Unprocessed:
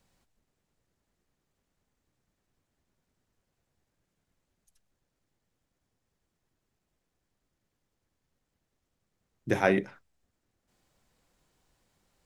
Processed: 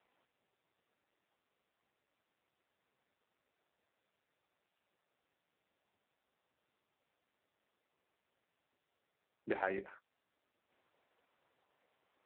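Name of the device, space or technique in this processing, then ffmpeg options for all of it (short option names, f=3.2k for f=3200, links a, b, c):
voicemail: -af "highpass=400,lowpass=3k,acompressor=threshold=-35dB:ratio=8,volume=3.5dB" -ar 8000 -c:a libopencore_amrnb -b:a 5900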